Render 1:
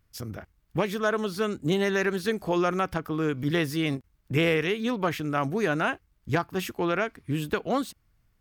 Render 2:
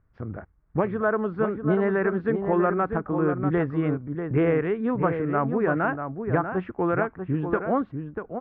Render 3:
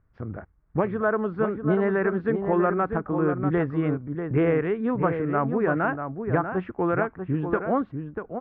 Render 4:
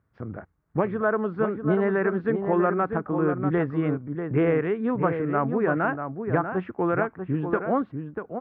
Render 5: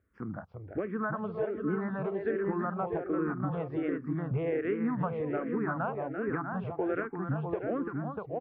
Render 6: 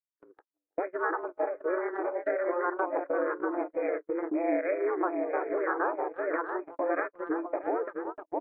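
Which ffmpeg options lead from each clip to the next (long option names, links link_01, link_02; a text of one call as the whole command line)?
ffmpeg -i in.wav -filter_complex "[0:a]lowpass=frequency=1600:width=0.5412,lowpass=frequency=1600:width=1.3066,asplit=2[link_01][link_02];[link_02]adelay=641.4,volume=-7dB,highshelf=frequency=4000:gain=-14.4[link_03];[link_01][link_03]amix=inputs=2:normalize=0,volume=2.5dB" out.wav
ffmpeg -i in.wav -af anull out.wav
ffmpeg -i in.wav -af "highpass=98" out.wav
ffmpeg -i in.wav -filter_complex "[0:a]acompressor=threshold=-26dB:ratio=6,asplit=2[link_01][link_02];[link_02]aecho=0:1:341:0.473[link_03];[link_01][link_03]amix=inputs=2:normalize=0,asplit=2[link_04][link_05];[link_05]afreqshift=-1.3[link_06];[link_04][link_06]amix=inputs=2:normalize=1" out.wav
ffmpeg -i in.wav -af "aeval=exprs='val(0)*sin(2*PI*180*n/s)':channel_layout=same,afftfilt=real='re*between(b*sr/4096,290,2500)':imag='im*between(b*sr/4096,290,2500)':win_size=4096:overlap=0.75,agate=range=-49dB:threshold=-39dB:ratio=16:detection=peak,volume=7dB" out.wav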